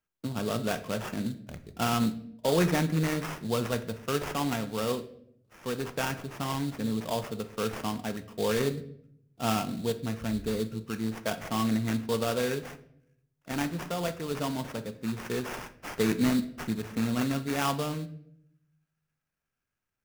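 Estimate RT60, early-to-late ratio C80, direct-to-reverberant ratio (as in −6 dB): 0.70 s, 17.5 dB, 10.0 dB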